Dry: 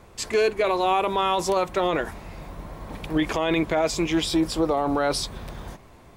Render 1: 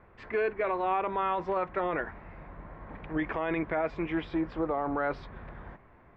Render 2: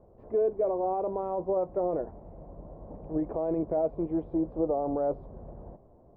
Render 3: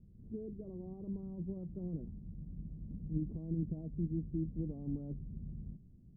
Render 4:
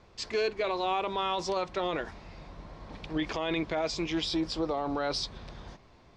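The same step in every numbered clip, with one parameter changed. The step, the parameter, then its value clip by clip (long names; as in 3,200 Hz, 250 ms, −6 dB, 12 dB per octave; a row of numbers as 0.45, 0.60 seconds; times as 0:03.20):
transistor ladder low-pass, frequency: 2,200, 750, 230, 6,000 Hertz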